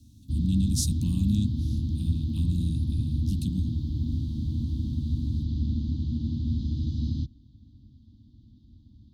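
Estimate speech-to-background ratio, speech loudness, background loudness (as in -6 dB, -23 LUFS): -1.5 dB, -31.0 LUFS, -29.5 LUFS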